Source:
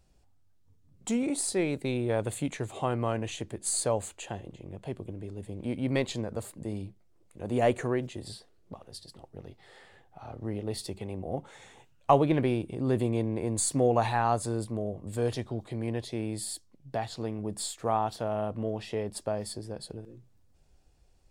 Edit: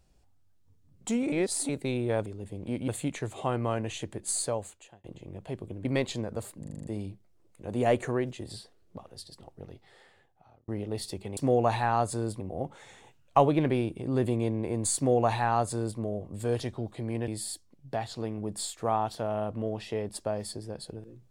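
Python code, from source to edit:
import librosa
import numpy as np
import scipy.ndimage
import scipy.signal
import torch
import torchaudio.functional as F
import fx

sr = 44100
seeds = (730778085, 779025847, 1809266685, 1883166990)

y = fx.edit(x, sr, fx.reverse_span(start_s=1.32, length_s=0.37),
    fx.fade_out_span(start_s=3.67, length_s=0.75),
    fx.move(start_s=5.23, length_s=0.62, to_s=2.26),
    fx.stutter(start_s=6.6, slice_s=0.04, count=7),
    fx.fade_out_span(start_s=9.39, length_s=1.05),
    fx.duplicate(start_s=13.69, length_s=1.03, to_s=11.13),
    fx.cut(start_s=16.01, length_s=0.28), tone=tone)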